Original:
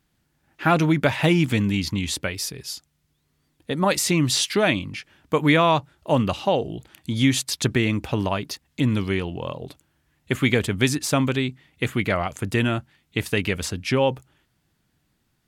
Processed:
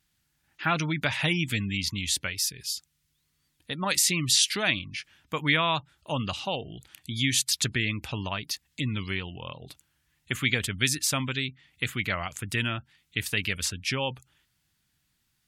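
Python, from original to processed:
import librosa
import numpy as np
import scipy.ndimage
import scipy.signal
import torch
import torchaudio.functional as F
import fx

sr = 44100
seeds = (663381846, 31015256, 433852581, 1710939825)

y = fx.wow_flutter(x, sr, seeds[0], rate_hz=2.1, depth_cents=29.0)
y = fx.tone_stack(y, sr, knobs='5-5-5')
y = fx.spec_gate(y, sr, threshold_db=-30, keep='strong')
y = y * 10.0 ** (7.5 / 20.0)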